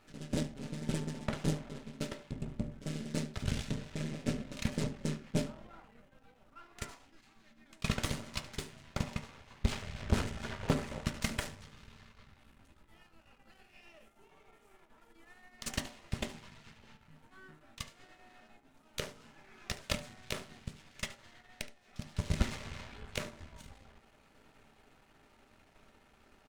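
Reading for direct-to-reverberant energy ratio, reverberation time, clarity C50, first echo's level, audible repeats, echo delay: 6.0 dB, 0.45 s, 14.5 dB, −18.0 dB, 1, 72 ms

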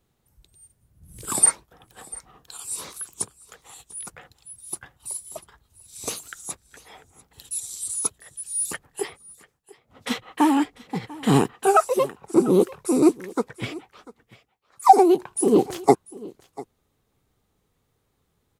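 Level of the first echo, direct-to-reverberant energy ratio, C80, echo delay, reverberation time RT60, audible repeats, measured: −20.5 dB, no reverb audible, no reverb audible, 694 ms, no reverb audible, 1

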